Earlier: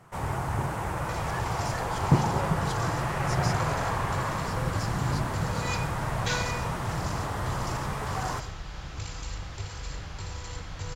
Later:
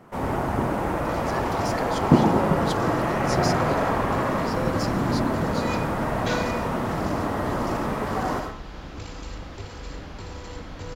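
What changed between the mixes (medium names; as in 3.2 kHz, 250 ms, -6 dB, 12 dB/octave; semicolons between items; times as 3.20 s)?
speech +9.5 dB; first sound: send +11.5 dB; master: add ten-band graphic EQ 125 Hz -6 dB, 250 Hz +12 dB, 500 Hz +4 dB, 8 kHz -7 dB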